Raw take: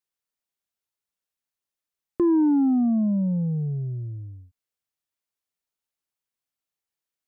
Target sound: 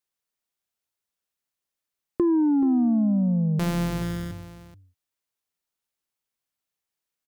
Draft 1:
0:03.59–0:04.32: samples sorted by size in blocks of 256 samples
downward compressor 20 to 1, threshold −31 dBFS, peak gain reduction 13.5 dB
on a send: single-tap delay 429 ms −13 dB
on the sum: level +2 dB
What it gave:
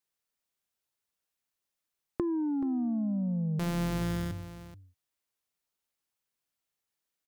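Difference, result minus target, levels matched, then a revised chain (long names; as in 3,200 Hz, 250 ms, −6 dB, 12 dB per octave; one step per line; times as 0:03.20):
downward compressor: peak gain reduction +10 dB
0:03.59–0:04.32: samples sorted by size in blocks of 256 samples
downward compressor 20 to 1, threshold −20.5 dBFS, peak gain reduction 3.5 dB
on a send: single-tap delay 429 ms −13 dB
on the sum: level +2 dB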